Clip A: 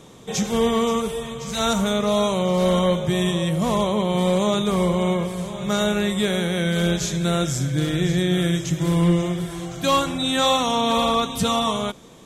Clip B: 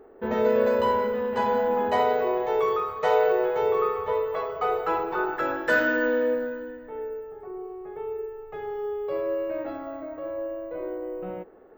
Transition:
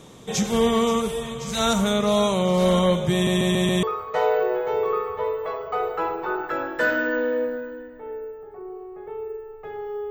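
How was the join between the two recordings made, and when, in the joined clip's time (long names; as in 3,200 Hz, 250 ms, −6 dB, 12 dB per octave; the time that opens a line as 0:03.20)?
clip A
0:03.13: stutter in place 0.14 s, 5 plays
0:03.83: continue with clip B from 0:02.72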